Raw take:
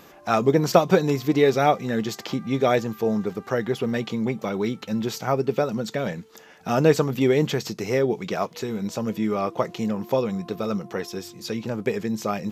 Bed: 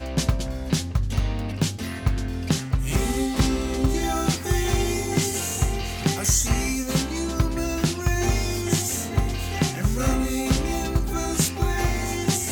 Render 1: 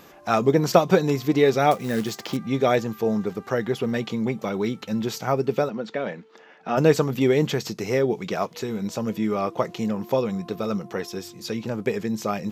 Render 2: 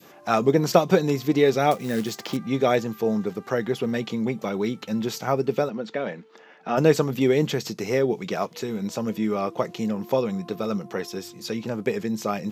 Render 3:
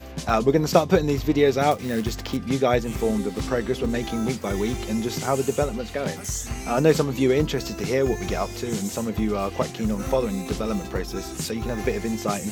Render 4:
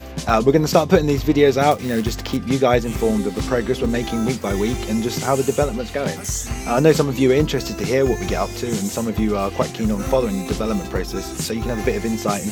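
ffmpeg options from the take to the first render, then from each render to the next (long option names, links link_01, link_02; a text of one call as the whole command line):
ffmpeg -i in.wav -filter_complex "[0:a]asettb=1/sr,asplit=3[link_01][link_02][link_03];[link_01]atrim=end=1.714[link_04];[link_02]atrim=start=1.71:end=2.37,asetpts=PTS-STARTPTS,afade=type=in:duration=0.004:curve=qsin,afade=type=out:start_time=0.656:duration=0.004:curve=qsin,acrusher=bits=4:mode=log:mix=0:aa=0.000001[link_05];[link_03]atrim=start=2.366[link_06];[link_04][link_05]acrossfade=duration=0.004:curve1=hsin:curve2=qsin[link_07];[link_07][link_06]acrossfade=duration=0.004:curve1=qsin:curve2=hsin,asplit=3[link_08][link_09][link_10];[link_08]afade=type=out:start_time=5.68:duration=0.02[link_11];[link_09]highpass=250,lowpass=3000,afade=type=in:start_time=5.68:duration=0.02,afade=type=out:start_time=6.76:duration=0.02[link_12];[link_10]afade=type=in:start_time=6.76:duration=0.02[link_13];[link_11][link_12][link_13]amix=inputs=3:normalize=0" out.wav
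ffmpeg -i in.wav -af "adynamicequalizer=threshold=0.0158:dfrequency=1100:dqfactor=0.83:tfrequency=1100:tqfactor=0.83:attack=5:release=100:ratio=0.375:range=1.5:mode=cutabove:tftype=bell,highpass=110" out.wav
ffmpeg -i in.wav -i bed.wav -filter_complex "[1:a]volume=-9dB[link_01];[0:a][link_01]amix=inputs=2:normalize=0" out.wav
ffmpeg -i in.wav -af "volume=4.5dB,alimiter=limit=-1dB:level=0:latency=1" out.wav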